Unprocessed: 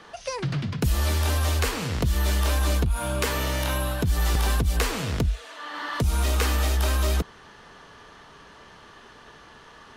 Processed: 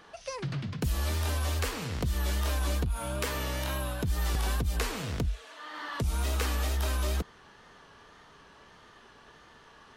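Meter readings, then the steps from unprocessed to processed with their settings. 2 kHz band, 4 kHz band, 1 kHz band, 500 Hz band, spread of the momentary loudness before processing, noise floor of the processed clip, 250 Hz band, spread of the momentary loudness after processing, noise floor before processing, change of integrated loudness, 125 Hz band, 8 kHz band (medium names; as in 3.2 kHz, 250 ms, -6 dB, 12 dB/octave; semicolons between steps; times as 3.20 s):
-6.5 dB, -6.5 dB, -6.5 dB, -6.5 dB, 5 LU, -56 dBFS, -6.5 dB, 5 LU, -49 dBFS, -6.5 dB, -6.5 dB, -6.5 dB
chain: wow and flutter 51 cents; trim -6.5 dB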